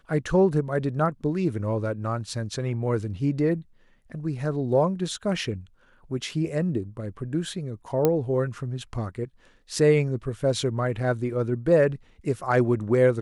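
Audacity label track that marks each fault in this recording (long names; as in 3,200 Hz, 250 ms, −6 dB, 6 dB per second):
8.050000	8.050000	click −8 dBFS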